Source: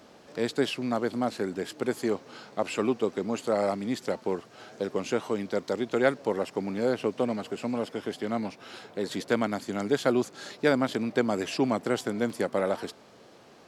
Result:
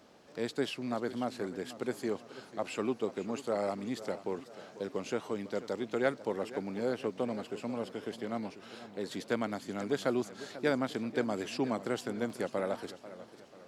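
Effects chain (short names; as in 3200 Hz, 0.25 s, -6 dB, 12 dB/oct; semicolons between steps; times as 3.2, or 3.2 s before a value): warbling echo 0.492 s, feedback 46%, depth 128 cents, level -15 dB; gain -6.5 dB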